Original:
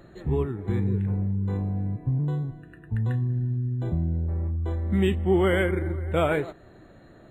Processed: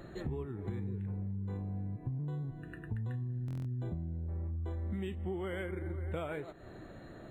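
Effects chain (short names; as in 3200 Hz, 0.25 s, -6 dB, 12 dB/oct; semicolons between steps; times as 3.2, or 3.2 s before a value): compressor 10:1, threshold -36 dBFS, peak gain reduction 19 dB; stuck buffer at 3.46, samples 1024, times 7; gain +1 dB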